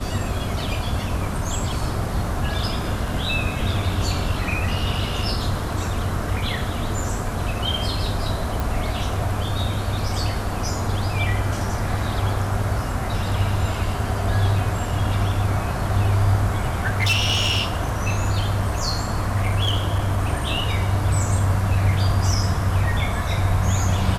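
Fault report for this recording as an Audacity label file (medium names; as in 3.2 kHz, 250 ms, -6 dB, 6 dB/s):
8.600000	8.600000	pop
16.860000	20.290000	clipped -15 dBFS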